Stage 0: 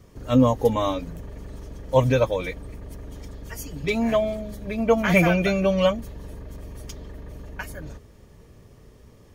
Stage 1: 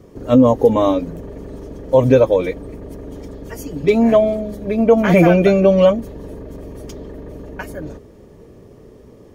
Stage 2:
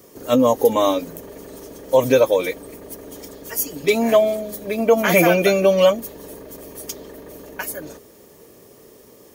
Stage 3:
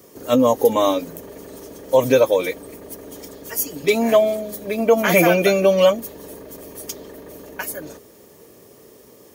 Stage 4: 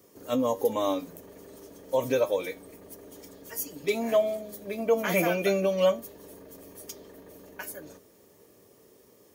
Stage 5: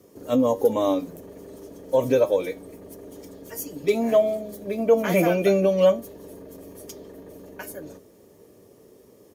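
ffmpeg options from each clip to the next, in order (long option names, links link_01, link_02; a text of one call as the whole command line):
ffmpeg -i in.wav -af "equalizer=frequency=370:width=0.54:gain=13,alimiter=level_in=1dB:limit=-1dB:release=50:level=0:latency=1,volume=-1dB" out.wav
ffmpeg -i in.wav -af "aemphasis=mode=production:type=riaa" out.wav
ffmpeg -i in.wav -af "highpass=47" out.wav
ffmpeg -i in.wav -af "flanger=delay=9.8:depth=1.3:regen=77:speed=1.3:shape=triangular,volume=-6dB" out.wav
ffmpeg -i in.wav -filter_complex "[0:a]acrossover=split=710|1400[link_01][link_02][link_03];[link_01]acontrast=81[link_04];[link_04][link_02][link_03]amix=inputs=3:normalize=0,aresample=32000,aresample=44100" out.wav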